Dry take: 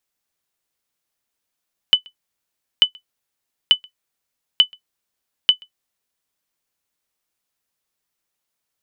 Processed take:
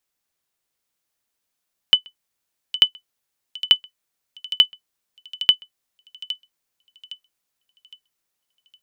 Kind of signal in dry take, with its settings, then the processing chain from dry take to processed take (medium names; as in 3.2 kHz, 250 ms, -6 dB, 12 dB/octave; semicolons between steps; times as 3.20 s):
sonar ping 3 kHz, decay 0.10 s, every 0.89 s, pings 5, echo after 0.13 s, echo -30 dB -2 dBFS
feedback echo behind a high-pass 812 ms, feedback 38%, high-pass 4.4 kHz, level -6 dB